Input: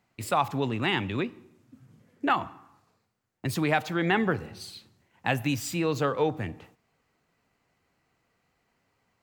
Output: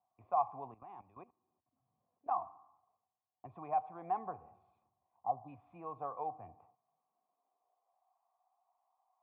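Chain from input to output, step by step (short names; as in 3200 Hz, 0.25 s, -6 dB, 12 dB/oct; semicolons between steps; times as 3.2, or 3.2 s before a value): vocal tract filter a; 0.74–2.31 level quantiser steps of 17 dB; high-pass sweep 62 Hz -> 810 Hz, 6.35–8.11; 5.17–5.48 spectral delete 1300–3400 Hz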